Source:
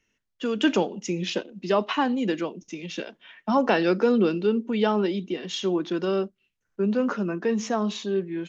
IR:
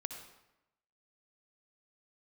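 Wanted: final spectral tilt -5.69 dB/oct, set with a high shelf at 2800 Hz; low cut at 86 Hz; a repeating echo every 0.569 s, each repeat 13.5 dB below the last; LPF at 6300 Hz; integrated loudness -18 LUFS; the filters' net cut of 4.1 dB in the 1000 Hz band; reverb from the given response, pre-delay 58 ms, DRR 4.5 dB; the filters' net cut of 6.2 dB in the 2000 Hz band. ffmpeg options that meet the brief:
-filter_complex "[0:a]highpass=86,lowpass=6.3k,equalizer=f=1k:t=o:g=-3.5,equalizer=f=2k:t=o:g=-5,highshelf=f=2.8k:g=-5.5,aecho=1:1:569|1138:0.211|0.0444,asplit=2[a][b];[1:a]atrim=start_sample=2205,adelay=58[c];[b][c]afir=irnorm=-1:irlink=0,volume=-3.5dB[d];[a][d]amix=inputs=2:normalize=0,volume=7.5dB"

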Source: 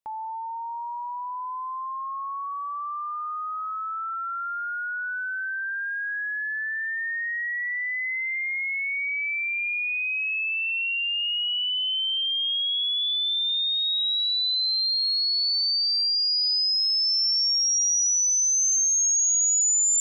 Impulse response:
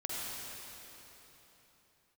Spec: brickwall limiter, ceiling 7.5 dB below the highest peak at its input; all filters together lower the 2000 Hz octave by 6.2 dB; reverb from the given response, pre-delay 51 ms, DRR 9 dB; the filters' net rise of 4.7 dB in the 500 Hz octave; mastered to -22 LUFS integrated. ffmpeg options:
-filter_complex "[0:a]equalizer=f=500:t=o:g=7,equalizer=f=2k:t=o:g=-8.5,alimiter=level_in=2dB:limit=-24dB:level=0:latency=1,volume=-2dB,asplit=2[a][b];[1:a]atrim=start_sample=2205,adelay=51[c];[b][c]afir=irnorm=-1:irlink=0,volume=-13dB[d];[a][d]amix=inputs=2:normalize=0,volume=6dB"

